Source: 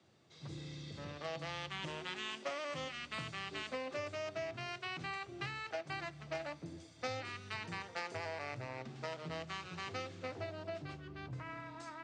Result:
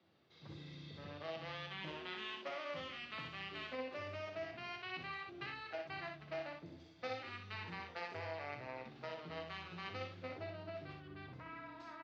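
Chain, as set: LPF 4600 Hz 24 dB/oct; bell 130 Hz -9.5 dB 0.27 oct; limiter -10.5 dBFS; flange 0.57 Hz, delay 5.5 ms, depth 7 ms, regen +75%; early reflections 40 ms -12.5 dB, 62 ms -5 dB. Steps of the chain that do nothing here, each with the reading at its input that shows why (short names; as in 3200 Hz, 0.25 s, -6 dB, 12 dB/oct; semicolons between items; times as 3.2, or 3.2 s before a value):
limiter -10.5 dBFS: input peak -26.0 dBFS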